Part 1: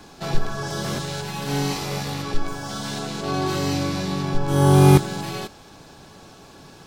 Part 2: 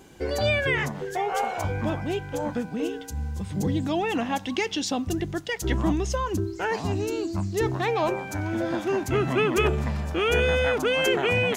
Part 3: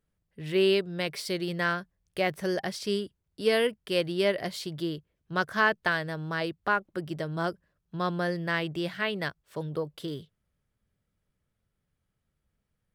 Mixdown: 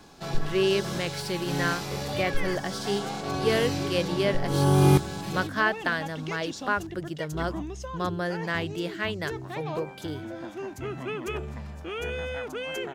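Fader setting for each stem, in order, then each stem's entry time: -6.0, -10.5, -0.5 dB; 0.00, 1.70, 0.00 s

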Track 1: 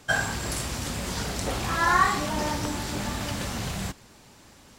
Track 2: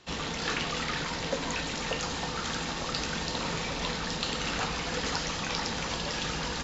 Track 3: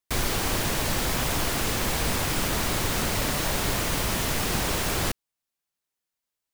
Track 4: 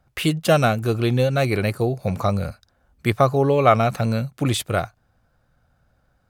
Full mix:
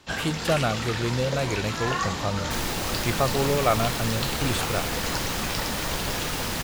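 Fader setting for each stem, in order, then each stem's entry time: -8.5, +0.5, -4.0, -7.0 dB; 0.00, 0.00, 2.40, 0.00 s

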